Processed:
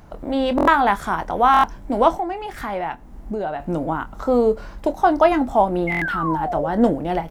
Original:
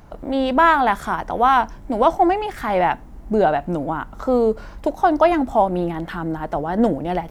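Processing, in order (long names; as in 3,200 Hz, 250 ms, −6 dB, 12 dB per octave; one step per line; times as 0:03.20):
0:02.16–0:03.60: downward compressor 2.5 to 1, threshold −27 dBFS, peak gain reduction 11 dB
0:05.87–0:06.68: sound drawn into the spectrogram fall 520–2,200 Hz −25 dBFS
double-tracking delay 25 ms −12 dB
buffer that repeats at 0:00.56/0:01.52/0:05.90, samples 1,024, times 4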